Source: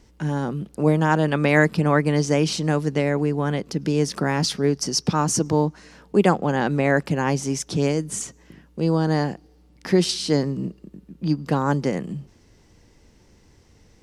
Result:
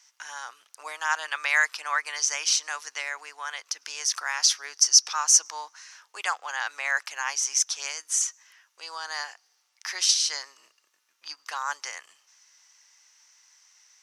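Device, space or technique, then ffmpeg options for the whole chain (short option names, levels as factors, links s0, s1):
headphones lying on a table: -af "highpass=f=1100:w=0.5412,highpass=f=1100:w=1.3066,equalizer=f=6000:t=o:w=0.36:g=11"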